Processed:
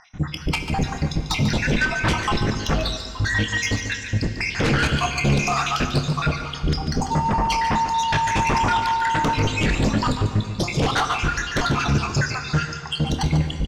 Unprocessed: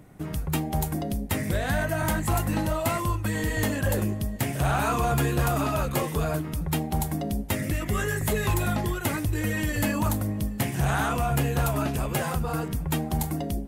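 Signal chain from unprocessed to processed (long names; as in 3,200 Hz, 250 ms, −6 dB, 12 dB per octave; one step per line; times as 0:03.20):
time-frequency cells dropped at random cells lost 73%
Butterworth low-pass 6,300 Hz 48 dB per octave
parametric band 470 Hz −14.5 dB 2.4 octaves
0:07.10–0:09.33: steady tone 910 Hz −37 dBFS
sine wavefolder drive 15 dB, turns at −16.5 dBFS
double-tracking delay 28 ms −11.5 dB
single-tap delay 144 ms −10 dB
convolution reverb RT60 2.8 s, pre-delay 3 ms, DRR 7.5 dB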